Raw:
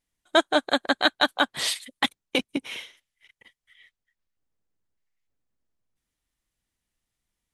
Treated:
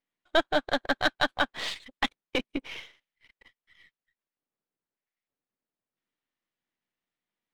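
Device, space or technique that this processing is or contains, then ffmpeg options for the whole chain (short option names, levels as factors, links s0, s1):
crystal radio: -af "highpass=210,lowpass=3200,aeval=exprs='if(lt(val(0),0),0.447*val(0),val(0))':c=same"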